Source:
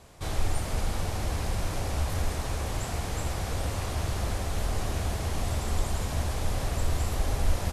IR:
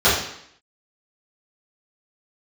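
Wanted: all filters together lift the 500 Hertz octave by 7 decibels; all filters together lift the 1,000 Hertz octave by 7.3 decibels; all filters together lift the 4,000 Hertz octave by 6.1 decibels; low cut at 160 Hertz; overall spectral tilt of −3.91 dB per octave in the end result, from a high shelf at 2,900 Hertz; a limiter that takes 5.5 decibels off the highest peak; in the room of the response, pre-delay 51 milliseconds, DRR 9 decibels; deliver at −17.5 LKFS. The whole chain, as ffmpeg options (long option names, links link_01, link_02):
-filter_complex "[0:a]highpass=160,equalizer=frequency=500:width_type=o:gain=6.5,equalizer=frequency=1000:width_type=o:gain=6.5,highshelf=frequency=2900:gain=4,equalizer=frequency=4000:width_type=o:gain=4,alimiter=limit=-23.5dB:level=0:latency=1,asplit=2[link_01][link_02];[1:a]atrim=start_sample=2205,adelay=51[link_03];[link_02][link_03]afir=irnorm=-1:irlink=0,volume=-32dB[link_04];[link_01][link_04]amix=inputs=2:normalize=0,volume=14.5dB"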